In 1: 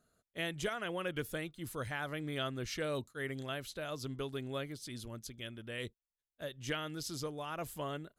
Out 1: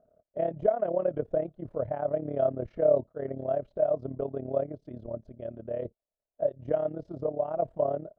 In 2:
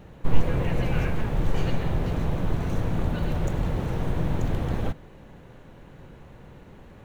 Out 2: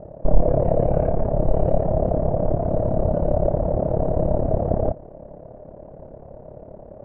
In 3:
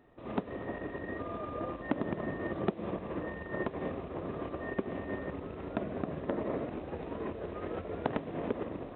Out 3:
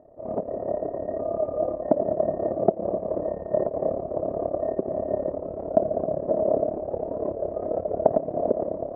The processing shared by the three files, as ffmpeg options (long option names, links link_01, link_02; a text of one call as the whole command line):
ffmpeg -i in.wav -af "acontrast=21,tremolo=f=35:d=0.788,lowpass=frequency=630:width_type=q:width=7.8,volume=1dB" out.wav